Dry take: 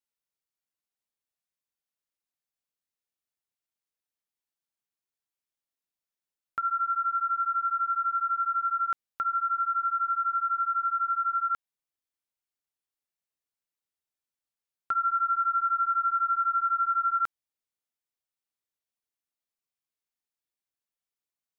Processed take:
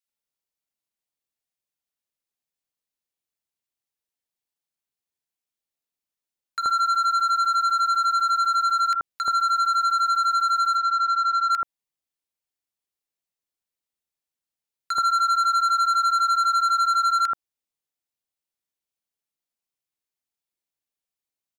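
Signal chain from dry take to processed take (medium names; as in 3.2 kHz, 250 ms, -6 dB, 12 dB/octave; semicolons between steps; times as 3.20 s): waveshaping leveller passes 2; 10.77–11.50 s: distance through air 89 m; bands offset in time highs, lows 80 ms, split 1.4 kHz; trim +5.5 dB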